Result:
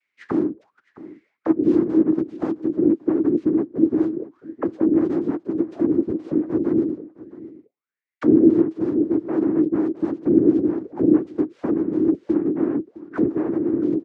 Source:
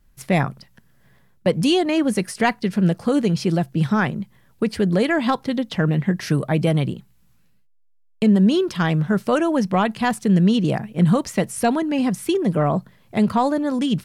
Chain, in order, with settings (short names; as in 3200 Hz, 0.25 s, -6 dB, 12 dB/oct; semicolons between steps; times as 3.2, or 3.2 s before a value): noise vocoder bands 3; harmoniser -7 st -2 dB, -4 st -5 dB; auto-wah 320–2200 Hz, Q 8.4, down, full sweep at -17 dBFS; on a send: echo 0.662 s -18.5 dB; on the sum: gain +7 dB